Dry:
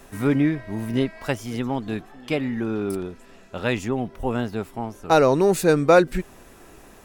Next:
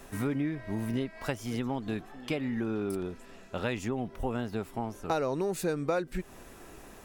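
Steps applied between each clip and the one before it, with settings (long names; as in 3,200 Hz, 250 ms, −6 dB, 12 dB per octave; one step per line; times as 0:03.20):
downward compressor 4 to 1, threshold −27 dBFS, peak gain reduction 14.5 dB
level −2 dB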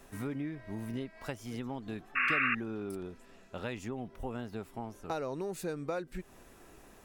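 sound drawn into the spectrogram noise, 0:02.15–0:02.55, 1,100–2,800 Hz −23 dBFS
level −6.5 dB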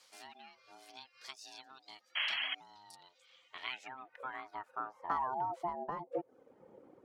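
reverb reduction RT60 0.95 s
ring modulation 520 Hz
band-pass filter sweep 4,600 Hz → 360 Hz, 0:02.89–0:06.47
level +10.5 dB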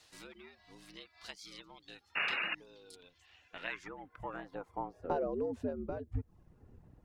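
frequency shifter −440 Hz
level +1 dB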